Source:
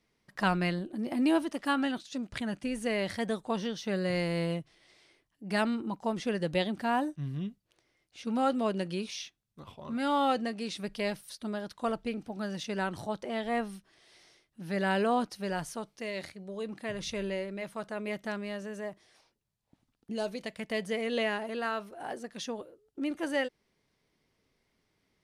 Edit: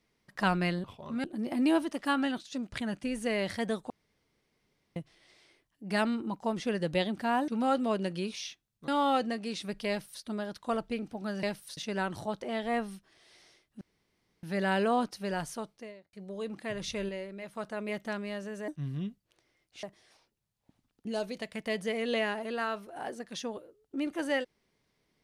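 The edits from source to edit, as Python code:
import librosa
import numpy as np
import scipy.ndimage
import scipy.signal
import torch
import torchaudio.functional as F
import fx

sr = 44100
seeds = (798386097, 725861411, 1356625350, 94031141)

y = fx.studio_fade_out(x, sr, start_s=15.78, length_s=0.54)
y = fx.edit(y, sr, fx.room_tone_fill(start_s=3.5, length_s=1.06),
    fx.move(start_s=7.08, length_s=1.15, to_s=18.87),
    fx.move(start_s=9.63, length_s=0.4, to_s=0.84),
    fx.duplicate(start_s=11.04, length_s=0.34, to_s=12.58),
    fx.insert_room_tone(at_s=14.62, length_s=0.62),
    fx.clip_gain(start_s=17.28, length_s=0.46, db=-4.5), tone=tone)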